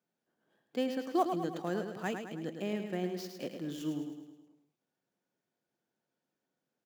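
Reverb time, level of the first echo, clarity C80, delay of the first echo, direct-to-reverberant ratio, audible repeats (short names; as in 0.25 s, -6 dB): none, -7.0 dB, none, 0.106 s, none, 5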